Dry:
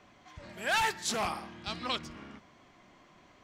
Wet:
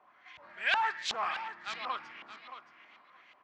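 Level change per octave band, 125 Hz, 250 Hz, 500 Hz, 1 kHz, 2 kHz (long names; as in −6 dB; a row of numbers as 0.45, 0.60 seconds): below −15 dB, −16.0 dB, −7.0 dB, +0.5 dB, +1.0 dB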